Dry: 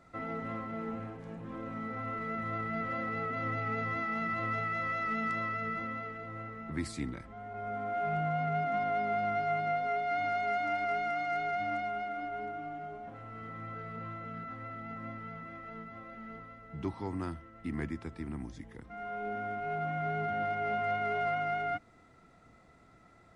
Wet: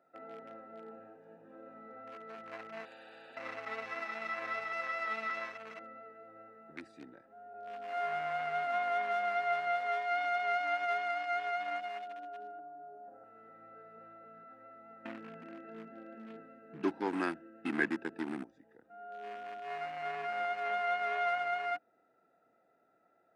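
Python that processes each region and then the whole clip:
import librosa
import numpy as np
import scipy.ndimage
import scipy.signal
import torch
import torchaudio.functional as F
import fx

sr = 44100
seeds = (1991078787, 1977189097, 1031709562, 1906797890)

y = fx.chain(x, sr, fx.fixed_phaser(hz=2500.0, stages=4),
    fx.spectral_comp(ratio=10.0), at=(2.85, 3.37))
y = fx.chain(y, sr, fx.brickwall_lowpass(high_hz=6900.0),
    fx.band_widen(depth_pct=40), at=(5.3, 5.71))
y = fx.chain(y, sr, fx.lowpass(hz=1200.0, slope=12),
    fx.hum_notches(base_hz=50, count=7),
    fx.band_squash(depth_pct=100), at=(12.59, 13.24))
y = fx.chain(y, sr, fx.high_shelf(hz=2100.0, db=5.0),
    fx.small_body(hz=(210.0, 300.0, 1600.0, 2600.0), ring_ms=25, db=15), at=(15.05, 18.44))
y = fx.wiener(y, sr, points=41)
y = scipy.signal.sosfilt(scipy.signal.butter(2, 800.0, 'highpass', fs=sr, output='sos'), y)
y = fx.high_shelf(y, sr, hz=4600.0, db=-5.5)
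y = y * 10.0 ** (5.5 / 20.0)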